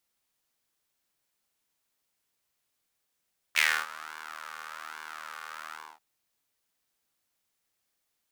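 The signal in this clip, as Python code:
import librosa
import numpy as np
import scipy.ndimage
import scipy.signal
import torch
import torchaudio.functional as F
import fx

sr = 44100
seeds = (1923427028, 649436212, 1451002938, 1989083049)

y = fx.sub_patch_pwm(sr, seeds[0], note=39, wave2='saw', interval_st=0, detune_cents=21, level2_db=-9.0, sub_db=-15.0, noise_db=-27.5, kind='highpass', cutoff_hz=860.0, q=3.7, env_oct=1.5, env_decay_s=0.27, env_sustain_pct=40, attack_ms=27.0, decay_s=0.28, sustain_db=-22, release_s=0.26, note_s=2.18, lfo_hz=1.2, width_pct=18, width_swing_pct=6)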